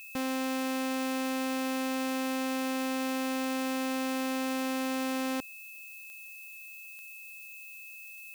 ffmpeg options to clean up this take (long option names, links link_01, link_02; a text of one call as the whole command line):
ffmpeg -i in.wav -af "adeclick=threshold=4,bandreject=frequency=2600:width=30,afftdn=noise_reduction=30:noise_floor=-47" out.wav